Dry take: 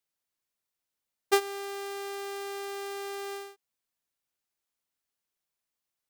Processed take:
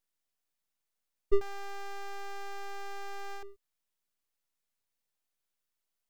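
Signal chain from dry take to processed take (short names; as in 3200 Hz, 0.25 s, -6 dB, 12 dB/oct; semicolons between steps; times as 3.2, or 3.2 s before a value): 1.41–3.43 bell 1100 Hz -13.5 dB 1.1 oct; full-wave rectifier; gain +2 dB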